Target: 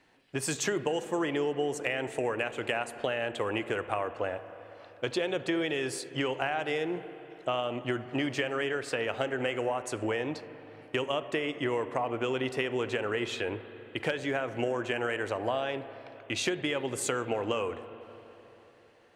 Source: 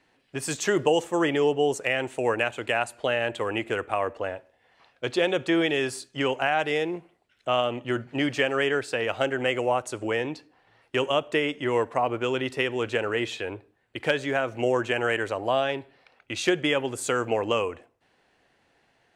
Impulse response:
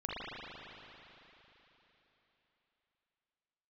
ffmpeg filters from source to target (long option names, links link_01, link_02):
-filter_complex "[0:a]acompressor=threshold=-28dB:ratio=6,asplit=2[link_01][link_02];[1:a]atrim=start_sample=2205,highshelf=frequency=3400:gain=-11[link_03];[link_02][link_03]afir=irnorm=-1:irlink=0,volume=-14.5dB[link_04];[link_01][link_04]amix=inputs=2:normalize=0"